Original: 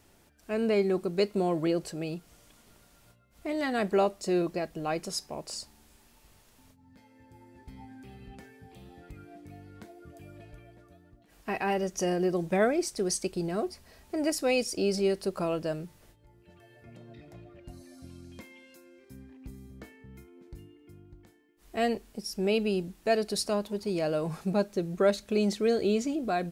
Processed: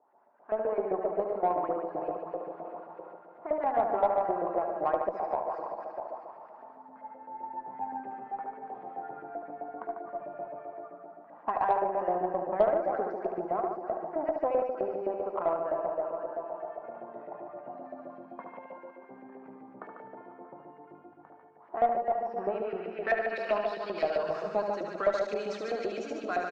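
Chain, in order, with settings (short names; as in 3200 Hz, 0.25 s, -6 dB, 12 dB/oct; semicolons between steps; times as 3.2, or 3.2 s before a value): regenerating reverse delay 0.158 s, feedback 67%, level -9 dB; low-pass sweep 900 Hz -> 6200 Hz, 22.19–24.44; compressor 2.5:1, threshold -41 dBFS, peak gain reduction 16 dB; LFO band-pass saw up 7.7 Hz 570–2000 Hz; HPF 150 Hz 24 dB/oct; loudspeakers at several distances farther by 25 m -6 dB, 50 m -6 dB; added harmonics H 2 -22 dB, 6 -45 dB, 7 -35 dB, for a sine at -27 dBFS; AGC gain up to 15.5 dB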